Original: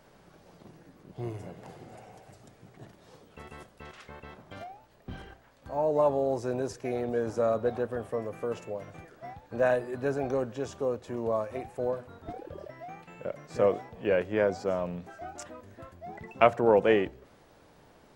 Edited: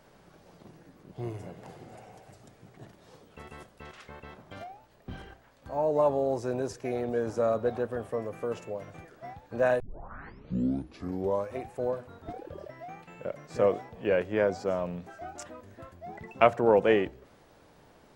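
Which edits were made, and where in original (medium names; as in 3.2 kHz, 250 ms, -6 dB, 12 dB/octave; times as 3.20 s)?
9.80 s: tape start 1.72 s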